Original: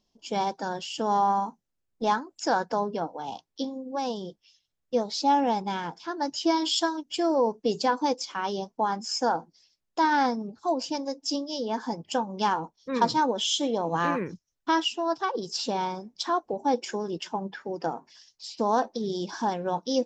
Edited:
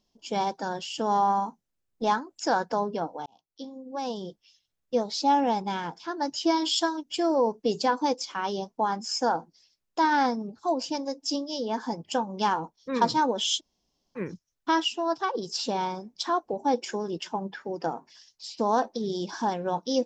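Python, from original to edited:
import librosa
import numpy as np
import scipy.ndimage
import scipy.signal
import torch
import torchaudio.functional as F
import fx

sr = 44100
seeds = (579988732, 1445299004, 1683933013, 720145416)

y = fx.edit(x, sr, fx.fade_in_span(start_s=3.26, length_s=0.99),
    fx.room_tone_fill(start_s=13.58, length_s=0.6, crossfade_s=0.06), tone=tone)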